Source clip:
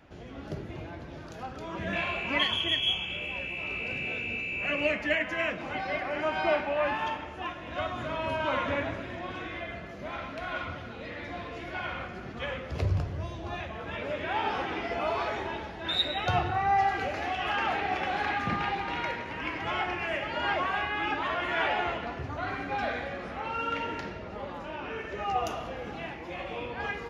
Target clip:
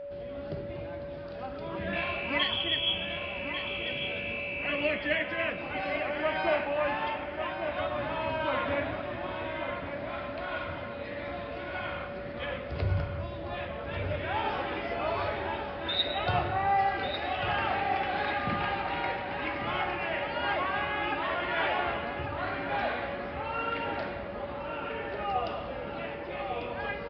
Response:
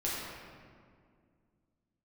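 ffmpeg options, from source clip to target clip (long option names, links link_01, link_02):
-filter_complex "[0:a]aeval=exprs='val(0)+0.0158*sin(2*PI*570*n/s)':channel_layout=same,asplit=2[link_01][link_02];[link_02]adelay=1145,lowpass=frequency=3500:poles=1,volume=-7dB,asplit=2[link_03][link_04];[link_04]adelay=1145,lowpass=frequency=3500:poles=1,volume=0.49,asplit=2[link_05][link_06];[link_06]adelay=1145,lowpass=frequency=3500:poles=1,volume=0.49,asplit=2[link_07][link_08];[link_08]adelay=1145,lowpass=frequency=3500:poles=1,volume=0.49,asplit=2[link_09][link_10];[link_10]adelay=1145,lowpass=frequency=3500:poles=1,volume=0.49,asplit=2[link_11][link_12];[link_12]adelay=1145,lowpass=frequency=3500:poles=1,volume=0.49[link_13];[link_01][link_03][link_05][link_07][link_09][link_11][link_13]amix=inputs=7:normalize=0,aresample=11025,aresample=44100,volume=-1.5dB"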